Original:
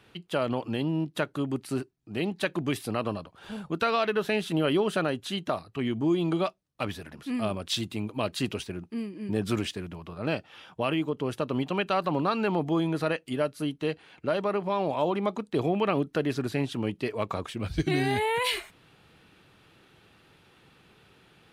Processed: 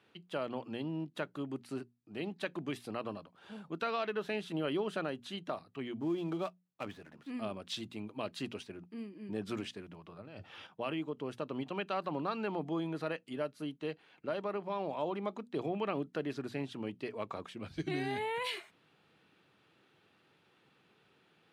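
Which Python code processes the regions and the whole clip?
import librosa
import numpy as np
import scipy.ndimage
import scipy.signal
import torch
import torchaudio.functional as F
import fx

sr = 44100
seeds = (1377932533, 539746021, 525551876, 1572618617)

y = fx.chain(x, sr, fx.dead_time(dead_ms=0.078),
    fx.high_shelf(hz=4200.0, db=-5.5), at=(6.0, 7.3))
y = fx.chain(y, sr, fx.peak_eq(hz=94.0, db=13.5, octaves=0.77),
    fx.over_compress(threshold_db=-37.0, ratio=-1.0), at=(10.2, 10.67))
y = scipy.signal.sosfilt(scipy.signal.butter(2, 140.0, 'highpass', fs=sr, output='sos'), y)
y = fx.high_shelf(y, sr, hz=9000.0, db=-11.5)
y = fx.hum_notches(y, sr, base_hz=60, count=4)
y = y * librosa.db_to_amplitude(-9.0)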